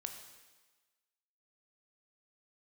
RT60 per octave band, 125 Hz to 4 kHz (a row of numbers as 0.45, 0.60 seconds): 1.0, 1.2, 1.3, 1.3, 1.3, 1.3 seconds